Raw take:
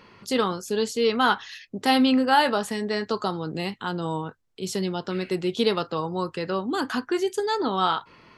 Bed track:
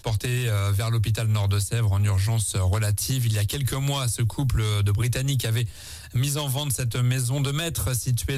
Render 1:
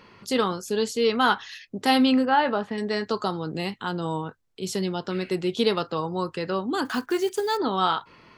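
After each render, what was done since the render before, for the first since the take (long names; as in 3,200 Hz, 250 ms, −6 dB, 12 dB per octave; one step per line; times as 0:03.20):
0:02.25–0:02.78: high-frequency loss of the air 330 metres
0:06.85–0:07.59: one scale factor per block 5 bits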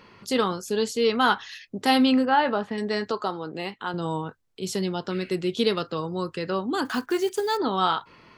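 0:03.11–0:03.94: bass and treble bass −10 dB, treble −8 dB
0:05.14–0:06.49: parametric band 840 Hz −6.5 dB 0.68 octaves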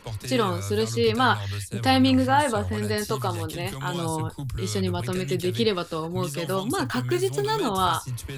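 mix in bed track −8.5 dB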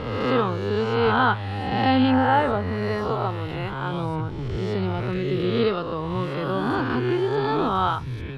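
peak hold with a rise ahead of every peak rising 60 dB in 1.38 s
high-frequency loss of the air 360 metres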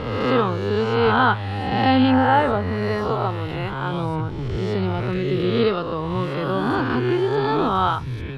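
level +2.5 dB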